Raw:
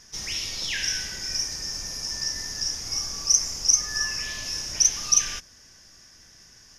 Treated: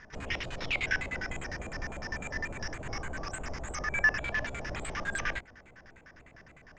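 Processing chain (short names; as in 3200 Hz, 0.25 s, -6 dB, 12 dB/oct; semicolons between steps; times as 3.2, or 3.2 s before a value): trilling pitch shifter +5 st, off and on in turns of 0.144 s; LFO low-pass square 9.9 Hz 660–1800 Hz; gain +3.5 dB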